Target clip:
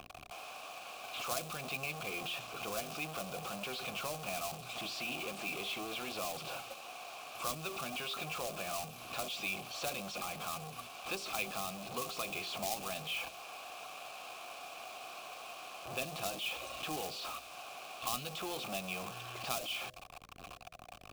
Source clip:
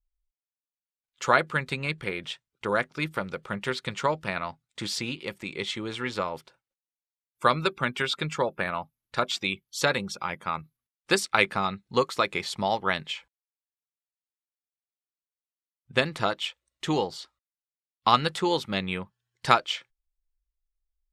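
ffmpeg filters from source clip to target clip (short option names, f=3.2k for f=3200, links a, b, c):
-filter_complex "[0:a]aeval=exprs='val(0)+0.5*0.141*sgn(val(0))':c=same,asplit=3[a][b][c];[a]bandpass=f=730:t=q:w=8,volume=0dB[d];[b]bandpass=f=1.09k:t=q:w=8,volume=-6dB[e];[c]bandpass=f=2.44k:t=q:w=8,volume=-9dB[f];[d][e][f]amix=inputs=3:normalize=0,bandreject=f=57.05:t=h:w=4,bandreject=f=114.1:t=h:w=4,bandreject=f=171.15:t=h:w=4,bandreject=f=228.2:t=h:w=4,bandreject=f=285.25:t=h:w=4,bandreject=f=342.3:t=h:w=4,bandreject=f=399.35:t=h:w=4,bandreject=f=456.4:t=h:w=4,bandreject=f=513.45:t=h:w=4,bandreject=f=570.5:t=h:w=4,bandreject=f=627.55:t=h:w=4,acrusher=bits=3:mode=log:mix=0:aa=0.000001,acrossover=split=300|3000[g][h][i];[h]acompressor=threshold=-49dB:ratio=3[j];[g][j][i]amix=inputs=3:normalize=0,volume=2.5dB"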